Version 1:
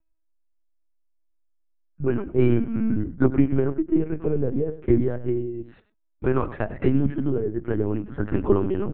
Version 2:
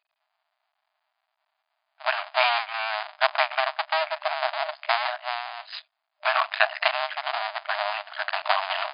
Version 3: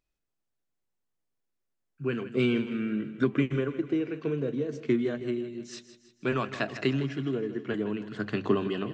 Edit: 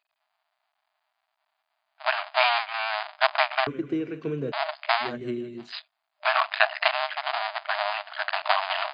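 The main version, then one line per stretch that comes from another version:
2
3.67–4.52 s: from 3
5.08–5.65 s: from 3, crossfade 0.16 s
not used: 1

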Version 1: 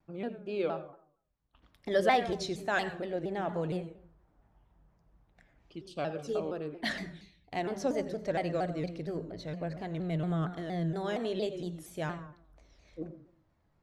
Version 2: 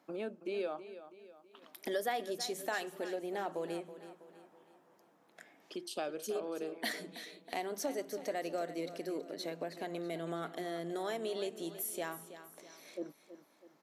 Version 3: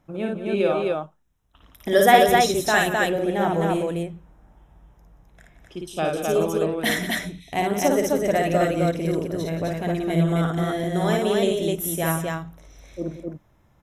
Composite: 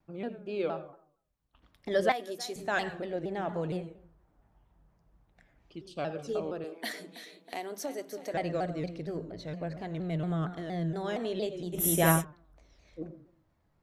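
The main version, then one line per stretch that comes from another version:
1
2.12–2.56 s: from 2
6.64–8.34 s: from 2
11.75–12.22 s: from 3, crossfade 0.06 s

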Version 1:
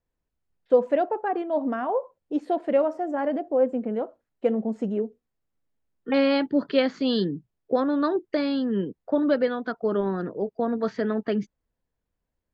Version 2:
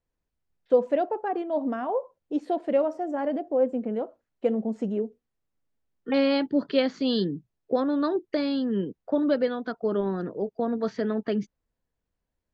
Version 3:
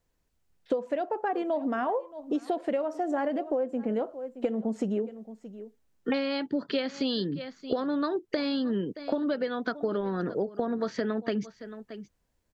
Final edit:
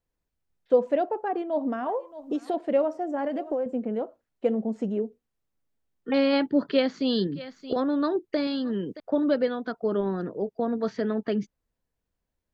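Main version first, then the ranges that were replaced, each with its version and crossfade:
2
1.86–2.54 s: from 3
3.26–3.66 s: from 3
6.33–6.77 s: from 1
7.27–7.76 s: from 3
8.47–9.00 s: from 3

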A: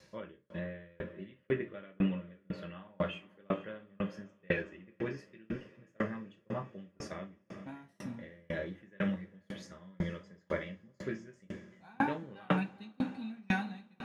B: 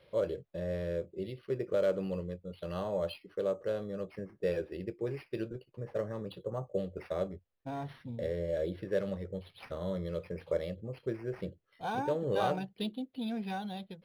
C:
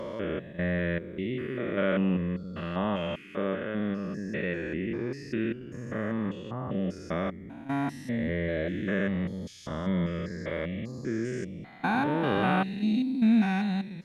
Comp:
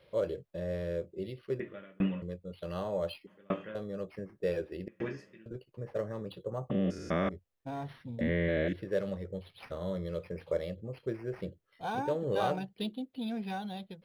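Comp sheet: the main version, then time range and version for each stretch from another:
B
1.60–2.22 s: from A
3.27–3.75 s: from A
4.88–5.46 s: from A
6.70–7.29 s: from C
8.21–8.73 s: from C

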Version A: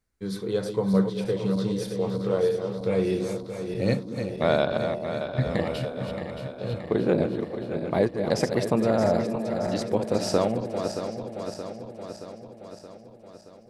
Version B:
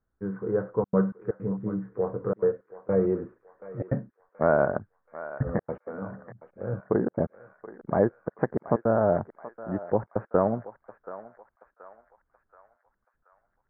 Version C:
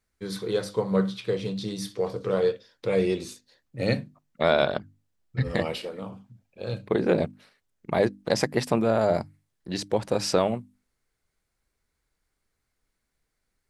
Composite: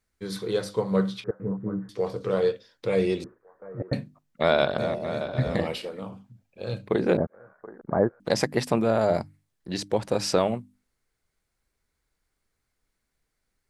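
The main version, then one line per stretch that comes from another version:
C
1.24–1.89 s: from B
3.24–3.93 s: from B
4.78–5.67 s: from A
7.17–8.20 s: from B

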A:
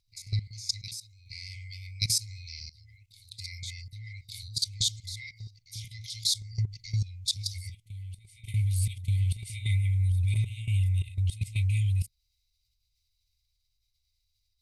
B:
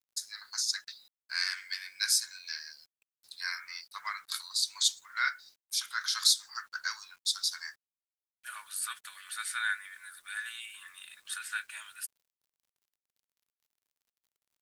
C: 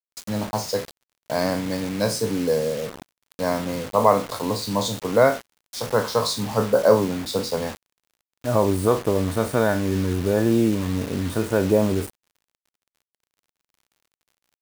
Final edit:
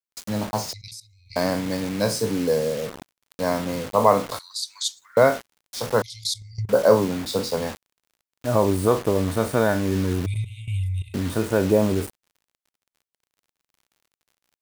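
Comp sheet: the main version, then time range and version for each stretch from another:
C
0.73–1.36 s: from A
4.39–5.17 s: from B
6.02–6.69 s: from A
10.26–11.14 s: from A

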